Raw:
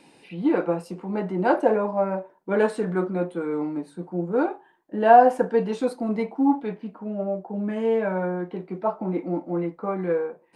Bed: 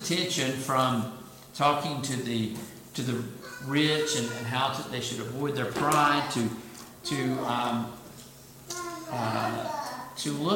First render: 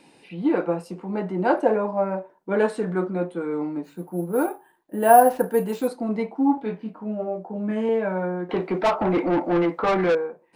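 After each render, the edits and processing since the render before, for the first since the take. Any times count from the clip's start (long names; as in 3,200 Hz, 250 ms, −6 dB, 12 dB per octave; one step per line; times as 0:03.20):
0:03.84–0:05.88: bad sample-rate conversion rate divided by 4×, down none, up hold
0:06.55–0:07.89: double-tracking delay 23 ms −5.5 dB
0:08.49–0:10.15: mid-hump overdrive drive 24 dB, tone 3,700 Hz, clips at −12.5 dBFS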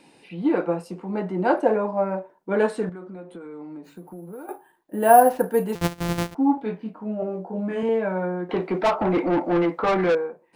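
0:02.89–0:04.49: downward compressor 8 to 1, threshold −35 dBFS
0:05.75–0:06.35: samples sorted by size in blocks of 256 samples
0:07.20–0:07.83: double-tracking delay 21 ms −2.5 dB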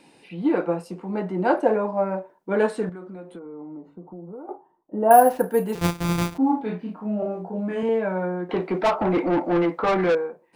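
0:03.39–0:05.11: Savitzky-Golay smoothing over 65 samples
0:05.74–0:07.49: double-tracking delay 34 ms −3 dB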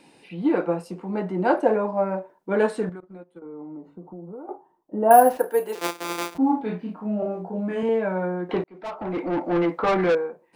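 0:03.00–0:03.42: noise gate −38 dBFS, range −19 dB
0:05.37–0:06.35: high-pass filter 330 Hz 24 dB per octave
0:08.64–0:09.71: fade in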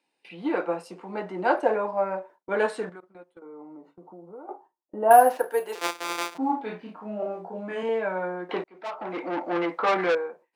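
meter weighting curve A
noise gate with hold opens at −42 dBFS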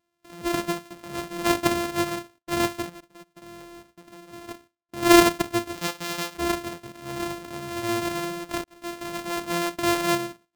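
samples sorted by size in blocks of 128 samples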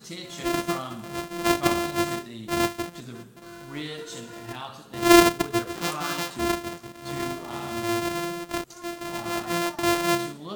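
mix in bed −10.5 dB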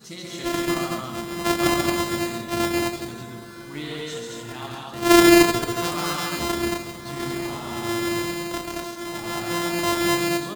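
loudspeakers that aren't time-aligned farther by 47 metres −3 dB, 77 metres −2 dB
dense smooth reverb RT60 4.3 s, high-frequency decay 0.8×, DRR 12 dB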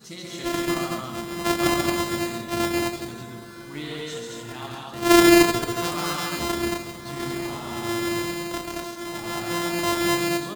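level −1 dB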